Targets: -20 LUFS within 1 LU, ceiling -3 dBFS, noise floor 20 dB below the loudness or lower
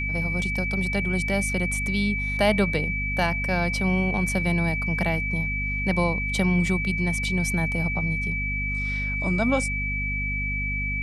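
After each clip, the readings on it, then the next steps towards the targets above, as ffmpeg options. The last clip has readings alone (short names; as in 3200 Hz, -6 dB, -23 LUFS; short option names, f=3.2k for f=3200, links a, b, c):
hum 50 Hz; harmonics up to 250 Hz; hum level -27 dBFS; steady tone 2300 Hz; tone level -27 dBFS; loudness -24.5 LUFS; peak -8.0 dBFS; loudness target -20.0 LUFS
-> -af "bandreject=f=50:t=h:w=6,bandreject=f=100:t=h:w=6,bandreject=f=150:t=h:w=6,bandreject=f=200:t=h:w=6,bandreject=f=250:t=h:w=6"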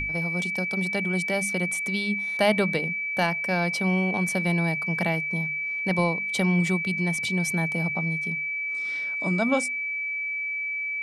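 hum none; steady tone 2300 Hz; tone level -27 dBFS
-> -af "bandreject=f=2.3k:w=30"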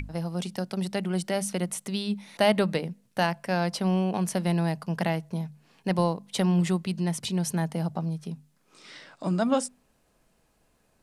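steady tone none; loudness -28.0 LUFS; peak -10.0 dBFS; loudness target -20.0 LUFS
-> -af "volume=8dB,alimiter=limit=-3dB:level=0:latency=1"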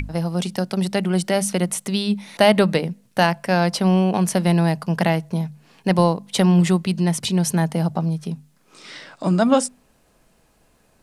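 loudness -20.0 LUFS; peak -3.0 dBFS; noise floor -60 dBFS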